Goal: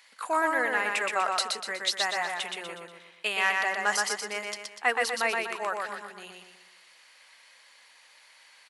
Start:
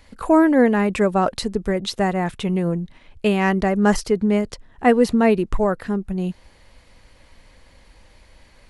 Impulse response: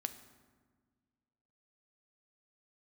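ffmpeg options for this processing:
-filter_complex "[0:a]highpass=1300,asplit=2[link_01][link_02];[link_02]aecho=0:1:122|244|366|488|610|732:0.708|0.319|0.143|0.0645|0.029|0.0131[link_03];[link_01][link_03]amix=inputs=2:normalize=0"

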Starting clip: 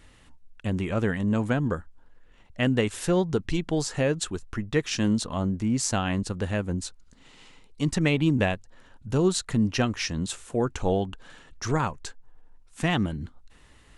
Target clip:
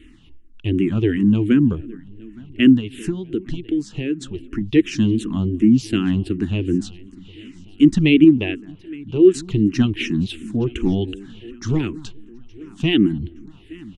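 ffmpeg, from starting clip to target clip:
ffmpeg -i in.wav -filter_complex "[0:a]firequalizer=gain_entry='entry(170,0);entry(330,12);entry(530,-17);entry(2900,3);entry(4400,-9);entry(7500,-12)':delay=0.05:min_phase=1,asplit=2[link_01][link_02];[link_02]adelay=214,lowpass=frequency=900:poles=1,volume=-20dB,asplit=2[link_03][link_04];[link_04]adelay=214,lowpass=frequency=900:poles=1,volume=0.27[link_05];[link_03][link_05]amix=inputs=2:normalize=0[link_06];[link_01][link_06]amix=inputs=2:normalize=0,asettb=1/sr,asplit=3[link_07][link_08][link_09];[link_07]atrim=end=2.764[link_10];[link_08]atrim=start=2.76:end=4.61,asetpts=PTS-STARTPTS,afade=type=in:duration=0.004:curve=qsin,afade=type=out:start_time=1.846:duration=0.004:curve=qsin,acompressor=threshold=-28dB:ratio=4[link_11];[link_09]atrim=start=4.606[link_12];[link_10][link_11]acrossfade=duration=0.004:curve1=hsin:curve2=qsin[link_13];[link_13][link_12]acrossfade=duration=0.004:curve1=qsin:curve2=hsin,asettb=1/sr,asplit=3[link_14][link_15][link_16];[link_14]atrim=end=8.244[link_17];[link_15]atrim=start=8.24:end=9.34,asetpts=PTS-STARTPTS,afade=type=in:duration=0.004:curve=qsin,afade=type=out:start_time=1.096:duration=0.004:curve=qsin,bass=frequency=250:gain=-9,treble=frequency=4000:gain=-15[link_18];[link_16]atrim=start=9.336[link_19];[link_17][link_18]acrossfade=duration=0.004:curve1=hsin:curve2=qsin[link_20];[link_20][link_19]acrossfade=duration=0.004:curve1=qsin:curve2=hsin,asplit=2[link_21][link_22];[link_22]aecho=0:1:868|1736|2604:0.0708|0.0347|0.017[link_23];[link_21][link_23]amix=inputs=2:normalize=0,asplit=2[link_24][link_25];[link_25]afreqshift=-2.7[link_26];[link_24][link_26]amix=inputs=2:normalize=1,volume=8.5dB" out.wav

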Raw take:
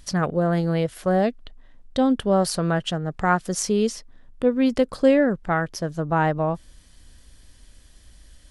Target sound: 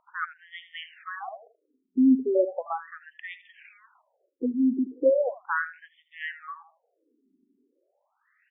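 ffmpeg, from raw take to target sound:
ffmpeg -i in.wav -af "afftfilt=real='re*pow(10,7/40*sin(2*PI*(1.6*log(max(b,1)*sr/1024/100)/log(2)-(-0.53)*(pts-256)/sr)))':imag='im*pow(10,7/40*sin(2*PI*(1.6*log(max(b,1)*sr/1024/100)/log(2)-(-0.53)*(pts-256)/sr)))':win_size=1024:overlap=0.75,aecho=1:1:80|160|240:0.237|0.0498|0.0105,aeval=exprs='0.501*(cos(1*acos(clip(val(0)/0.501,-1,1)))-cos(1*PI/2))+0.0112*(cos(2*acos(clip(val(0)/0.501,-1,1)))-cos(2*PI/2))+0.0251*(cos(3*acos(clip(val(0)/0.501,-1,1)))-cos(3*PI/2))':channel_layout=same,aresample=8000,aresample=44100,afftfilt=real='re*between(b*sr/1024,280*pow(2600/280,0.5+0.5*sin(2*PI*0.37*pts/sr))/1.41,280*pow(2600/280,0.5+0.5*sin(2*PI*0.37*pts/sr))*1.41)':imag='im*between(b*sr/1024,280*pow(2600/280,0.5+0.5*sin(2*PI*0.37*pts/sr))/1.41,280*pow(2600/280,0.5+0.5*sin(2*PI*0.37*pts/sr))*1.41)':win_size=1024:overlap=0.75" out.wav

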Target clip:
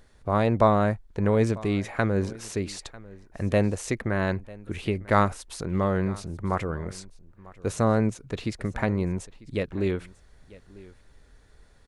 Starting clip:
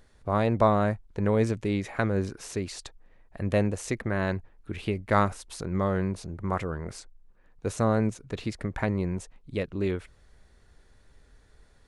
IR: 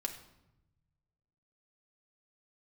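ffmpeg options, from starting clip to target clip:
-af "aecho=1:1:946:0.0891,volume=2dB"

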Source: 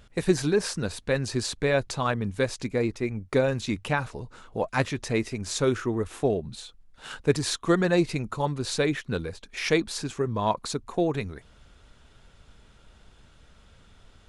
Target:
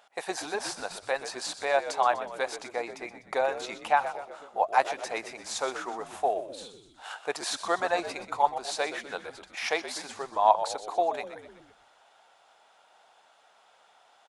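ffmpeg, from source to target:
ffmpeg -i in.wav -filter_complex "[0:a]highpass=frequency=760:width_type=q:width=4.9,asplit=6[link_01][link_02][link_03][link_04][link_05][link_06];[link_02]adelay=124,afreqshift=-76,volume=-12dB[link_07];[link_03]adelay=248,afreqshift=-152,volume=-17.7dB[link_08];[link_04]adelay=372,afreqshift=-228,volume=-23.4dB[link_09];[link_05]adelay=496,afreqshift=-304,volume=-29dB[link_10];[link_06]adelay=620,afreqshift=-380,volume=-34.7dB[link_11];[link_01][link_07][link_08][link_09][link_10][link_11]amix=inputs=6:normalize=0,volume=-3.5dB" out.wav

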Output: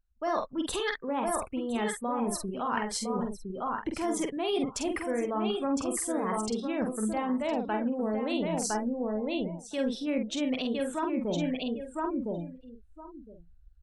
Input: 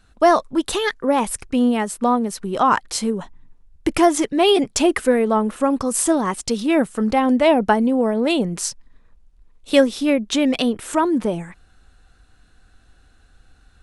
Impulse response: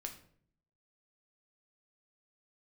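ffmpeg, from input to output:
-filter_complex "[0:a]aecho=1:1:1010|2020:0.398|0.0597,afftdn=noise_reduction=30:noise_floor=-35,areverse,acompressor=threshold=-24dB:ratio=10,areverse,asplit=2[link_01][link_02];[link_02]adelay=47,volume=-5dB[link_03];[link_01][link_03]amix=inputs=2:normalize=0,volume=-4dB"

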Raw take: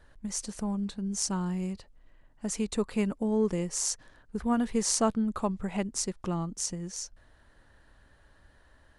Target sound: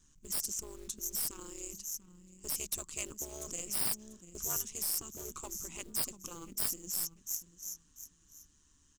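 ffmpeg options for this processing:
ffmpeg -i in.wav -filter_complex "[0:a]asettb=1/sr,asplit=3[link_01][link_02][link_03];[link_01]atrim=end=0.974[link_04];[link_02]atrim=start=0.97:end=1.39,asetpts=PTS-STARTPTS,afade=type=in:duration=0.004:curve=qsin,afade=type=out:start_time=0.416:duration=0.004:curve=qsin,aeval=exprs='(tanh(31.6*val(0)+0.15)-tanh(0.15))/31.6':channel_layout=same[link_05];[link_03]atrim=start=1.386[link_06];[link_04][link_05]acrossfade=duration=0.004:curve1=hsin:curve2=qsin[link_07];[link_07][link_06]acrossfade=duration=0.004:curve1=qsin:curve2=hsin,firequalizer=gain_entry='entry(110,0);entry(180,2);entry(290,6);entry(590,-21);entry(1100,0);entry(1700,-10);entry(2700,6);entry(6600,9);entry(10000,-23)':delay=0.05:min_phase=1,asettb=1/sr,asplit=3[link_08][link_09][link_10];[link_08]atrim=end=4.564[link_11];[link_09]atrim=start=4.56:end=5.15,asetpts=PTS-STARTPTS,afade=type=in:duration=0.004:curve=qsin,afade=type=out:start_time=0.586:duration=0.004:curve=qsin,acrossover=split=170|550|1900[link_12][link_13][link_14][link_15];[link_12]acompressor=threshold=-46dB:ratio=4[link_16];[link_13]acompressor=threshold=-37dB:ratio=4[link_17];[link_14]acompressor=threshold=-47dB:ratio=4[link_18];[link_15]acompressor=threshold=-31dB:ratio=4[link_19];[link_16][link_17][link_18][link_19]amix=inputs=4:normalize=0[link_20];[link_10]atrim=start=5.146[link_21];[link_11][link_20]acrossfade=duration=0.004:curve1=hsin:curve2=qsin[link_22];[link_22][link_21]acrossfade=duration=0.004:curve1=qsin:curve2=hsin,aeval=exprs='0.473*(cos(1*acos(clip(val(0)/0.473,-1,1)))-cos(1*PI/2))+0.0473*(cos(4*acos(clip(val(0)/0.473,-1,1)))-cos(4*PI/2))+0.0168*(cos(5*acos(clip(val(0)/0.473,-1,1)))-cos(5*PI/2))+0.0237*(cos(7*acos(clip(val(0)/0.473,-1,1)))-cos(7*PI/2))+0.0211*(cos(8*acos(clip(val(0)/0.473,-1,1)))-cos(8*PI/2))':channel_layout=same,tremolo=f=150:d=0.519,aecho=1:1:691|1382:0.112|0.0236,aexciter=amount=11.7:drive=8.8:freq=6500,acrusher=bits=6:mode=log:mix=0:aa=0.000001,afftfilt=real='re*lt(hypot(re,im),0.126)':imag='im*lt(hypot(re,im),0.126)':win_size=1024:overlap=0.75,volume=-6.5dB" out.wav

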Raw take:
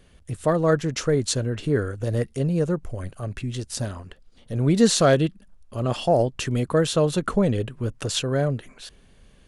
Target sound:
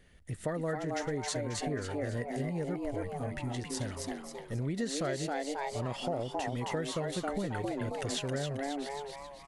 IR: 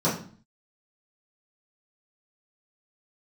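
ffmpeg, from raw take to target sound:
-filter_complex "[0:a]equalizer=frequency=1900:width=5.7:gain=11,bandreject=frequency=1100:width=12,asplit=2[link_01][link_02];[link_02]asplit=6[link_03][link_04][link_05][link_06][link_07][link_08];[link_03]adelay=269,afreqshift=140,volume=-4dB[link_09];[link_04]adelay=538,afreqshift=280,volume=-11.1dB[link_10];[link_05]adelay=807,afreqshift=420,volume=-18.3dB[link_11];[link_06]adelay=1076,afreqshift=560,volume=-25.4dB[link_12];[link_07]adelay=1345,afreqshift=700,volume=-32.5dB[link_13];[link_08]adelay=1614,afreqshift=840,volume=-39.7dB[link_14];[link_09][link_10][link_11][link_12][link_13][link_14]amix=inputs=6:normalize=0[link_15];[link_01][link_15]amix=inputs=2:normalize=0,acompressor=threshold=-24dB:ratio=6,volume=-7dB"

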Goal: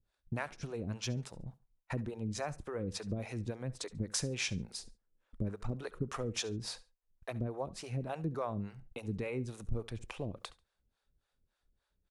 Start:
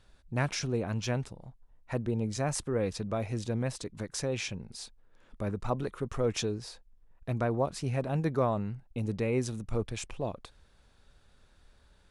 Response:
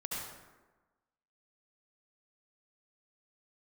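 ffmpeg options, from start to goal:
-filter_complex "[0:a]agate=range=-20dB:threshold=-51dB:ratio=16:detection=peak,acompressor=threshold=-35dB:ratio=6,acrossover=split=430[link_01][link_02];[link_01]aeval=exprs='val(0)*(1-1/2+1/2*cos(2*PI*3.5*n/s))':channel_layout=same[link_03];[link_02]aeval=exprs='val(0)*(1-1/2-1/2*cos(2*PI*3.5*n/s))':channel_layout=same[link_04];[link_03][link_04]amix=inputs=2:normalize=0,aecho=1:1:70|140:0.1|0.022,asplit=2[link_05][link_06];[1:a]atrim=start_sample=2205,afade=type=out:start_time=0.14:duration=0.01,atrim=end_sample=6615[link_07];[link_06][link_07]afir=irnorm=-1:irlink=0,volume=-23dB[link_08];[link_05][link_08]amix=inputs=2:normalize=0,volume=5.5dB"

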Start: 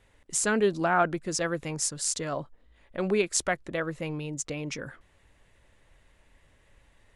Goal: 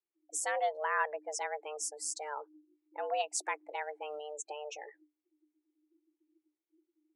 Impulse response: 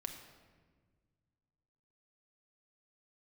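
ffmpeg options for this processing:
-filter_complex "[0:a]asplit=3[link_01][link_02][link_03];[link_01]afade=type=out:start_time=3.54:duration=0.02[link_04];[link_02]acrusher=bits=4:mode=log:mix=0:aa=0.000001,afade=type=in:start_time=3.54:duration=0.02,afade=type=out:start_time=4.33:duration=0.02[link_05];[link_03]afade=type=in:start_time=4.33:duration=0.02[link_06];[link_04][link_05][link_06]amix=inputs=3:normalize=0,afftdn=noise_reduction=31:noise_floor=-39,afreqshift=300,volume=-8dB"

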